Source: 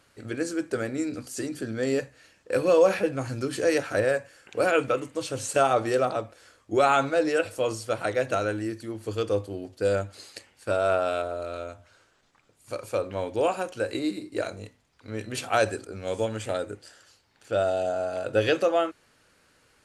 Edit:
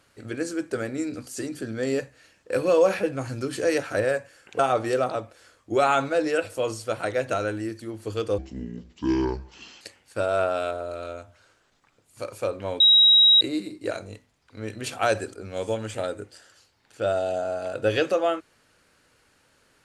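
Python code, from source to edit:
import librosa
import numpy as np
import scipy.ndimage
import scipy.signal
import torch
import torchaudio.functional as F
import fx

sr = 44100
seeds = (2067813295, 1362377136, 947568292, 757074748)

y = fx.edit(x, sr, fx.cut(start_s=4.59, length_s=1.01),
    fx.speed_span(start_s=9.39, length_s=0.93, speed=0.65),
    fx.bleep(start_s=13.31, length_s=0.61, hz=3830.0, db=-12.0), tone=tone)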